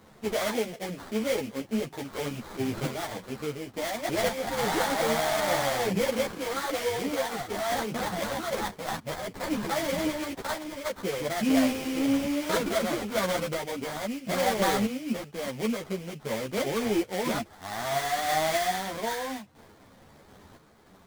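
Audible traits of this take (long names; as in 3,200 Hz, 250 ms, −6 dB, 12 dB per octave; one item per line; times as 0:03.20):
sample-and-hold tremolo
aliases and images of a low sample rate 2,700 Hz, jitter 20%
a shimmering, thickened sound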